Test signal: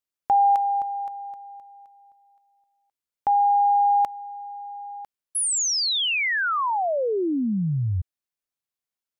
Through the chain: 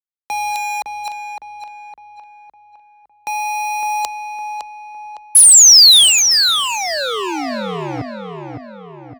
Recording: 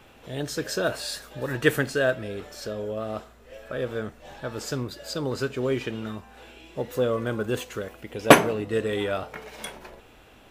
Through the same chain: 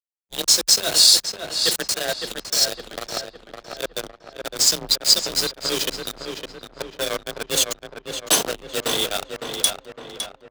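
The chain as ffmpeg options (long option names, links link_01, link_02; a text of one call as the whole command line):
ffmpeg -i in.wav -filter_complex "[0:a]acrossover=split=490|2100[link_01][link_02][link_03];[link_03]adynamicsmooth=sensitivity=6.5:basefreq=6300[link_04];[link_01][link_02][link_04]amix=inputs=3:normalize=0,bass=frequency=250:gain=-5,treble=frequency=4000:gain=-6,areverse,acompressor=threshold=-30dB:ratio=6:attack=11:release=944:knee=6:detection=peak,areverse,aexciter=amount=13.3:drive=8.2:freq=3400,acrusher=bits=4:mix=0:aa=0.000001,afreqshift=32,anlmdn=25.1,asplit=2[link_05][link_06];[link_06]adelay=559,lowpass=frequency=2600:poles=1,volume=-5.5dB,asplit=2[link_07][link_08];[link_08]adelay=559,lowpass=frequency=2600:poles=1,volume=0.5,asplit=2[link_09][link_10];[link_10]adelay=559,lowpass=frequency=2600:poles=1,volume=0.5,asplit=2[link_11][link_12];[link_12]adelay=559,lowpass=frequency=2600:poles=1,volume=0.5,asplit=2[link_13][link_14];[link_14]adelay=559,lowpass=frequency=2600:poles=1,volume=0.5,asplit=2[link_15][link_16];[link_16]adelay=559,lowpass=frequency=2600:poles=1,volume=0.5[link_17];[link_05][link_07][link_09][link_11][link_13][link_15][link_17]amix=inputs=7:normalize=0,alimiter=level_in=7.5dB:limit=-1dB:release=50:level=0:latency=1,volume=-1dB" out.wav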